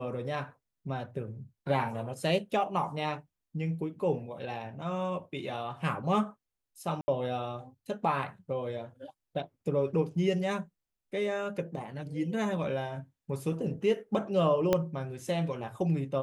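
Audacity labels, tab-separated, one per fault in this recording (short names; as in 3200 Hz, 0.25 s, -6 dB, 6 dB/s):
7.010000	7.080000	gap 70 ms
14.730000	14.730000	pop -12 dBFS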